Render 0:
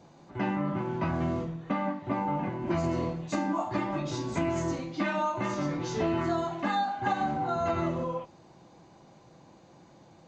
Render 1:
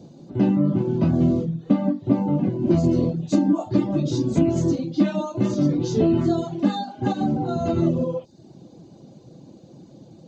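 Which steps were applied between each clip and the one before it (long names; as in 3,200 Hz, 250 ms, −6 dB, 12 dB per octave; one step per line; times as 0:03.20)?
reverb reduction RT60 0.56 s
octave-band graphic EQ 125/250/500/1,000/2,000/4,000 Hz +7/+9/+5/−9/−11/+4 dB
level +4.5 dB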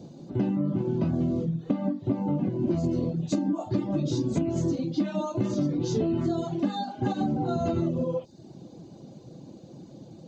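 downward compressor, threshold −23 dBFS, peak gain reduction 10.5 dB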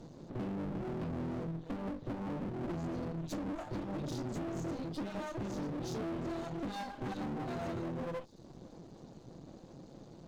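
half-wave rectification
tube saturation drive 23 dB, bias 0.75
level +3.5 dB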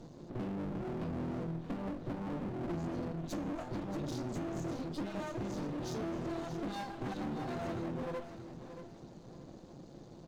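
tuned comb filter 350 Hz, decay 0.72 s
repeating echo 629 ms, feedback 30%, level −11 dB
level +7.5 dB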